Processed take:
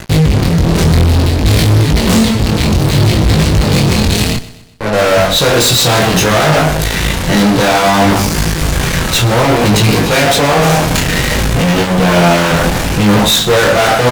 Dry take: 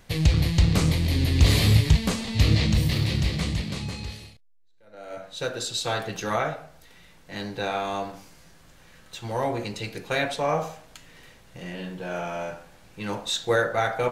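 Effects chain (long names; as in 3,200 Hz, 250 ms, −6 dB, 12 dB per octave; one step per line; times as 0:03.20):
low-shelf EQ 300 Hz +8.5 dB
reversed playback
downward compressor 16 to 1, threshold −33 dBFS, peak gain reduction 29.5 dB
reversed playback
fuzz pedal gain 53 dB, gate −59 dBFS
chorus effect 0.6 Hz, delay 18.5 ms, depth 5.7 ms
on a send: repeating echo 125 ms, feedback 45%, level −17 dB
on the sum: level +7.5 dB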